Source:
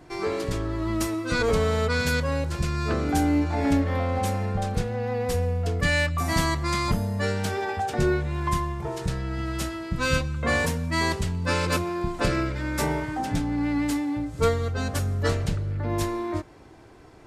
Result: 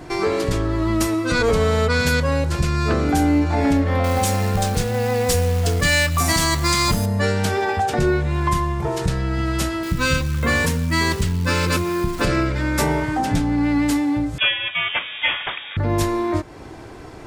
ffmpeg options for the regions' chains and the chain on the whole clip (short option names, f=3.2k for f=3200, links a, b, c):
-filter_complex "[0:a]asettb=1/sr,asplit=3[a][b][c];[a]atrim=end=4.044[d];[b]atrim=start=4.04:end=7.06,asetpts=PTS-STARTPTS,afade=t=in:d=0.004:c=qsin,afade=t=out:st=3.016:d=0.004:c=qsin,equalizer=f=8.1k:t=o:w=2.5:g=9.5,acrusher=bits=4:mode=log:mix=0:aa=0.000001[e];[c]atrim=start=7.056[f];[d][e]acrossfade=d=0.004:c1=hsin:c2=qsin[g];[g][f]acrossfade=d=0.004:c1=qsin:c2=hsin,asettb=1/sr,asplit=3[h][i][j];[h]atrim=end=9.834[k];[i]atrim=start=9.83:end=12.25,asetpts=PTS-STARTPTS,afade=t=in:d=0.004:c=qsin,afade=t=out:st=2.416:d=0.004:c=qsin,acrusher=bits=8:dc=4:mix=0:aa=0.000001,equalizer=f=700:t=o:w=0.71:g=-8[l];[j]atrim=start=12.246[m];[k][l]acrossfade=d=0.004:c1=hsin:c2=qsin[n];[n][m]acrossfade=d=0.004:c1=qsin:c2=hsin,asettb=1/sr,asplit=3[o][p][q];[o]atrim=end=14.384[r];[p]atrim=start=14.38:end=15.77,asetpts=PTS-STARTPTS,afade=t=in:d=0.004:c=qsin,afade=t=out:st=1.386:d=0.004:c=qsin,highpass=370,tiltshelf=f=660:g=-9.5,lowpass=f=3.2k:t=q:w=0.5098,lowpass=f=3.2k:t=q:w=0.6013,lowpass=f=3.2k:t=q:w=0.9,lowpass=f=3.2k:t=q:w=2.563,afreqshift=-3800[s];[q]atrim=start=15.766[t];[r][s]acrossfade=d=0.004:c1=hsin:c2=qsin[u];[u][t]acrossfade=d=0.004:c1=qsin:c2=hsin,acompressor=threshold=-38dB:ratio=1.5,alimiter=level_in=19dB:limit=-1dB:release=50:level=0:latency=1,volume=-7dB"